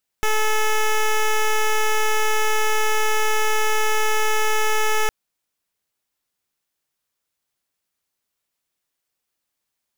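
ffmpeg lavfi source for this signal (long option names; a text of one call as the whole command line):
ffmpeg -f lavfi -i "aevalsrc='0.126*(2*lt(mod(432*t,1),0.1)-1)':duration=4.86:sample_rate=44100" out.wav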